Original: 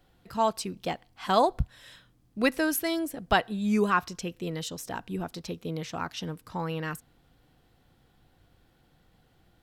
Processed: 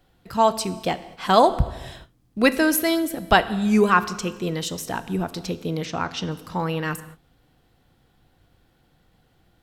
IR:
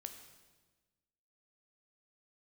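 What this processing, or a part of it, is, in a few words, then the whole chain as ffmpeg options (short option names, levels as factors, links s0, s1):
keyed gated reverb: -filter_complex "[0:a]asplit=3[s0][s1][s2];[1:a]atrim=start_sample=2205[s3];[s1][s3]afir=irnorm=-1:irlink=0[s4];[s2]apad=whole_len=424653[s5];[s4][s5]sidechaingate=range=0.0224:threshold=0.00158:ratio=16:detection=peak,volume=1.41[s6];[s0][s6]amix=inputs=2:normalize=0,asplit=3[s7][s8][s9];[s7]afade=t=out:st=5.85:d=0.02[s10];[s8]lowpass=7100,afade=t=in:st=5.85:d=0.02,afade=t=out:st=6.3:d=0.02[s11];[s9]afade=t=in:st=6.3:d=0.02[s12];[s10][s11][s12]amix=inputs=3:normalize=0,volume=1.26"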